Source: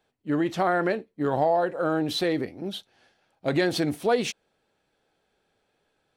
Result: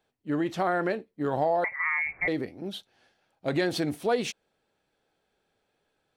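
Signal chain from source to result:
0:01.64–0:02.28: voice inversion scrambler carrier 2,500 Hz
level −3 dB

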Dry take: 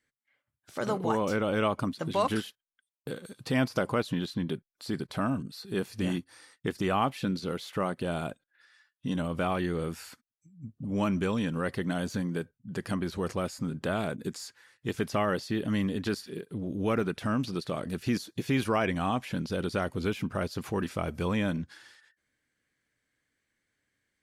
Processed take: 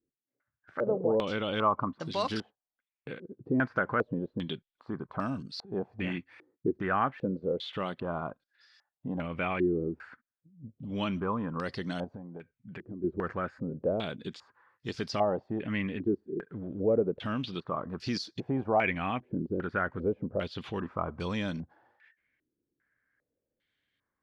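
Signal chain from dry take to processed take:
0:12.04–0:13.04: downward compressor 12 to 1, threshold −37 dBFS, peak gain reduction 11.5 dB
low-pass on a step sequencer 2.5 Hz 360–4,900 Hz
level −4.5 dB

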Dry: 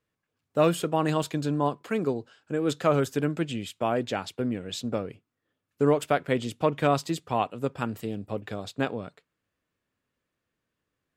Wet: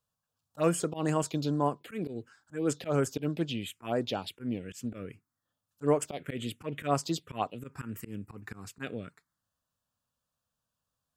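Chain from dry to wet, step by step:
high-shelf EQ 2,300 Hz +6.5 dB
volume swells 105 ms
phaser swept by the level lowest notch 360 Hz, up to 3,800 Hz, full sweep at −21 dBFS
level −2.5 dB

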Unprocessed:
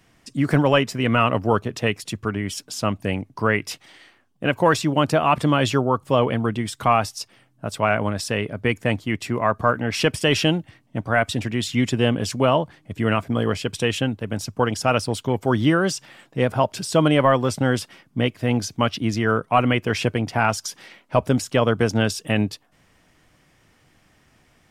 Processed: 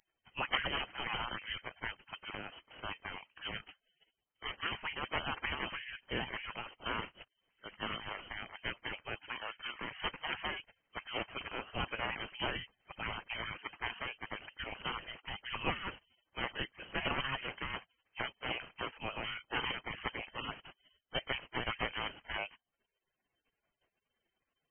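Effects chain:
high-pass filter 42 Hz
gate on every frequency bin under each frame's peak −25 dB weak
low-shelf EQ 220 Hz +11.5 dB
voice inversion scrambler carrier 3,100 Hz
level +1.5 dB

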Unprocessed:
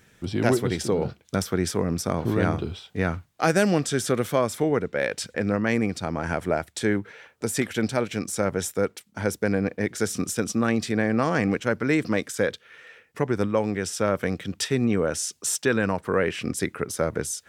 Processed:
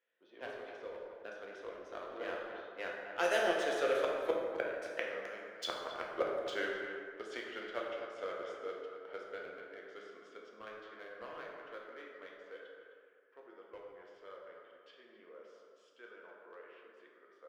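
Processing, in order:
source passing by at 0:05.07, 24 m/s, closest 2.3 metres
high-pass filter 490 Hz 24 dB per octave
low-pass that shuts in the quiet parts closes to 2,300 Hz, open at −45 dBFS
spectral tilt −2 dB per octave
leveller curve on the samples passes 1
gate with flip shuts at −31 dBFS, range −31 dB
thirty-one-band graphic EQ 800 Hz −8 dB, 3,150 Hz +10 dB, 8,000 Hz −5 dB
far-end echo of a speakerphone 260 ms, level −10 dB
dense smooth reverb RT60 2 s, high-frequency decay 0.45×, DRR −2 dB
level +12 dB

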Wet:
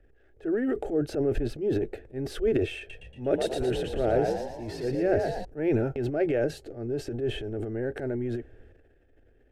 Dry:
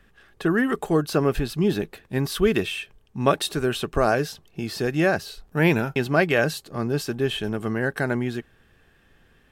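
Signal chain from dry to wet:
parametric band 3,800 Hz −14 dB 1.8 octaves
transient designer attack −8 dB, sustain +11 dB
head-to-tape spacing loss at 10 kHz 22 dB
phaser with its sweep stopped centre 440 Hz, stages 4
0:02.78–0:05.45: echo with shifted repeats 116 ms, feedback 49%, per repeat +50 Hz, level −4 dB

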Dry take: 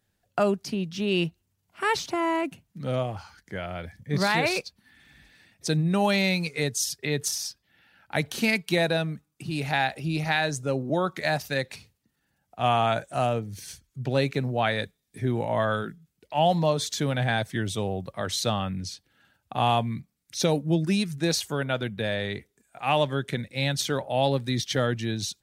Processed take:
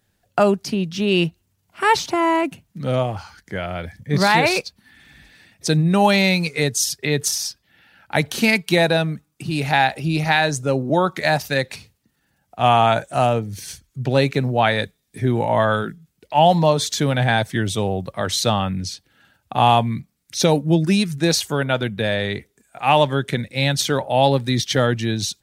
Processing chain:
dynamic equaliser 880 Hz, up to +5 dB, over −42 dBFS, Q 6.4
level +7 dB

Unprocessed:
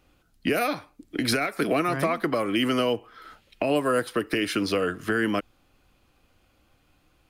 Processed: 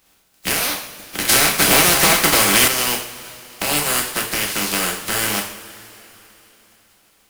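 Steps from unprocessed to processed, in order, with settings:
compressing power law on the bin magnitudes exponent 0.23
coupled-rooms reverb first 0.53 s, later 3.7 s, from −18 dB, DRR 0 dB
0:01.29–0:02.68: leveller curve on the samples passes 2
level +1.5 dB

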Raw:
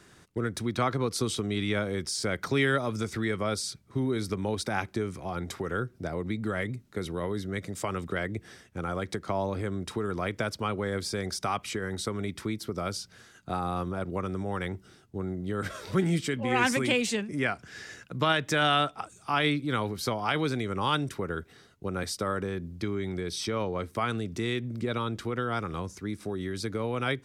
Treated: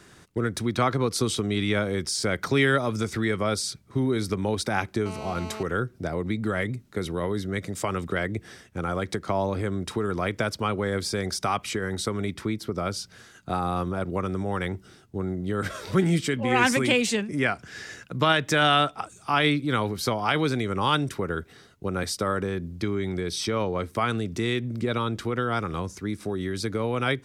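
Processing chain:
0:05.06–0:05.63: phone interference −42 dBFS
0:12.34–0:12.97: high-shelf EQ 4,300 Hz −5.5 dB
level +4 dB

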